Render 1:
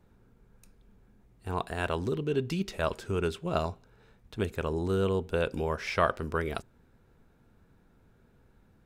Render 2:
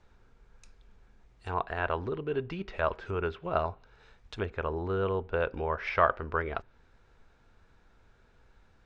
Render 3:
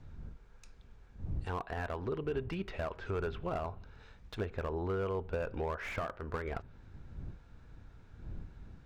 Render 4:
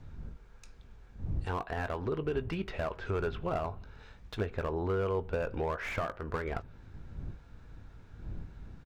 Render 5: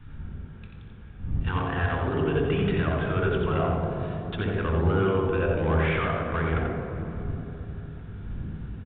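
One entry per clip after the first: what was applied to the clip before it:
low-pass that closes with the level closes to 1.6 kHz, closed at -29.5 dBFS; low-pass 6.9 kHz 24 dB/octave; peaking EQ 190 Hz -13.5 dB 2.7 oct; trim +6 dB
wind noise 88 Hz -46 dBFS; compression 5:1, threshold -31 dBFS, peak gain reduction 13 dB; slew-rate limiter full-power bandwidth 23 Hz
doubling 19 ms -14 dB; trim +3 dB
delay 88 ms -5 dB; reverberation RT60 3.5 s, pre-delay 61 ms, DRR 3 dB; resampled via 8 kHz; trim -1.5 dB

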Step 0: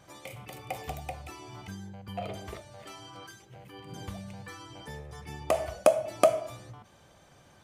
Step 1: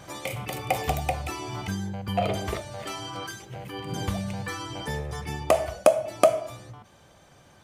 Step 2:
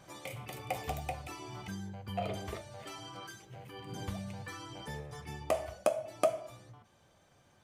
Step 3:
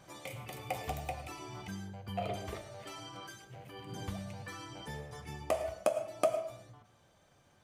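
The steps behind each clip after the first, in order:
gain riding within 4 dB 0.5 s; trim +7 dB
flange 0.62 Hz, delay 5.1 ms, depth 5.1 ms, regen -61%; trim -6.5 dB
algorithmic reverb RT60 0.41 s, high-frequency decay 0.6×, pre-delay 65 ms, DRR 11 dB; trim -1 dB

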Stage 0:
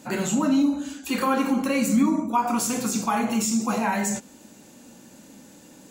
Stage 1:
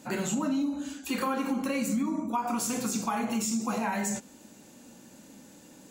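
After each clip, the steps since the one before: compression, threshold -22 dBFS, peak gain reduction 7 dB; trim -3.5 dB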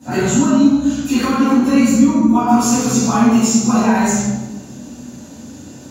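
reverberation RT60 1.1 s, pre-delay 3 ms, DRR -15.5 dB; trim -5 dB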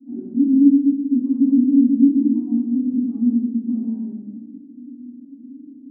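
Butterworth band-pass 270 Hz, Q 4.6

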